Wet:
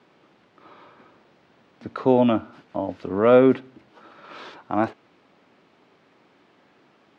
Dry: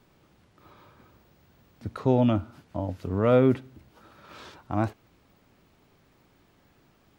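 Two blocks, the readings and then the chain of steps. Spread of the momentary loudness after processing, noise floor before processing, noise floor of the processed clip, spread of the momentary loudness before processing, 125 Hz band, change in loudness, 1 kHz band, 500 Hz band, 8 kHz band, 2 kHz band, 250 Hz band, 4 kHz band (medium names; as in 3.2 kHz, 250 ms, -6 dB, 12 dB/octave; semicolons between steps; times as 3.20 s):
17 LU, -63 dBFS, -60 dBFS, 16 LU, -6.0 dB, +4.5 dB, +6.5 dB, +6.0 dB, no reading, +6.5 dB, +3.5 dB, +4.5 dB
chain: band-pass 250–3900 Hz; trim +6.5 dB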